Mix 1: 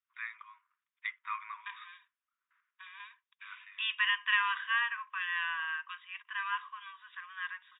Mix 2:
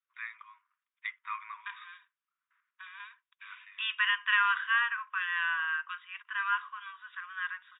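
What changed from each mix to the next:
second voice: add bell 1400 Hz +12.5 dB 0.26 oct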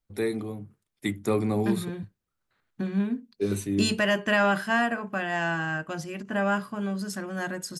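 first voice: remove LPF 2700 Hz 24 dB/oct; master: remove brick-wall FIR band-pass 940–3800 Hz

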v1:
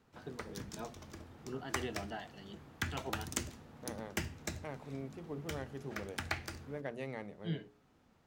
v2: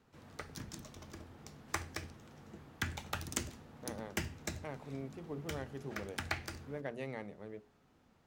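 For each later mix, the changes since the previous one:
first voice: muted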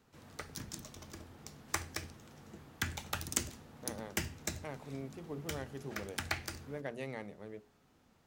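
master: add high shelf 4600 Hz +7 dB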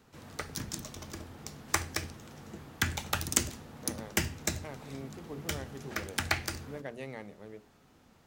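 background +6.5 dB

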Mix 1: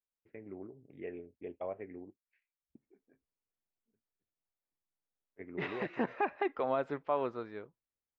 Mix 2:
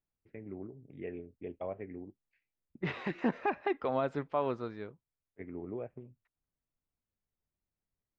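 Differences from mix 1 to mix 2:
second voice: entry -2.75 s; master: add tone controls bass +8 dB, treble +8 dB

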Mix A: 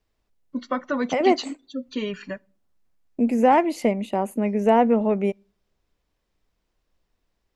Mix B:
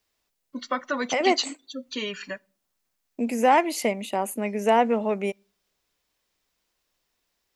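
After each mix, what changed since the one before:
master: add tilt +3 dB/oct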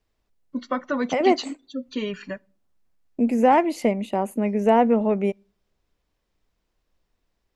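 master: add tilt -3 dB/oct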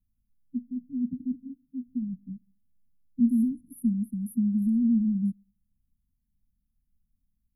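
master: add brick-wall FIR band-stop 270–9700 Hz

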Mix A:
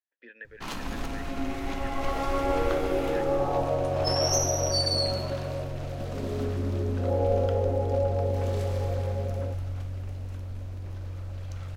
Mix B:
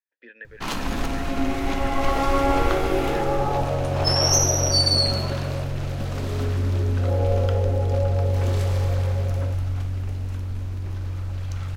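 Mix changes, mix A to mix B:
speech +3.0 dB; first sound +7.5 dB

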